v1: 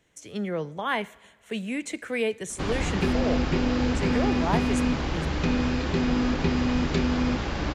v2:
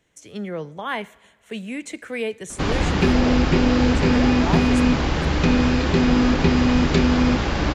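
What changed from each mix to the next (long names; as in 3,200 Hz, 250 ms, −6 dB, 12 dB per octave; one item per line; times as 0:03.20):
background +7.0 dB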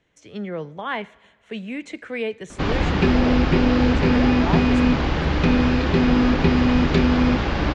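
master: add low-pass filter 4,300 Hz 12 dB per octave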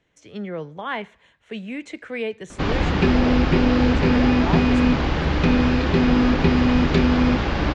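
reverb: off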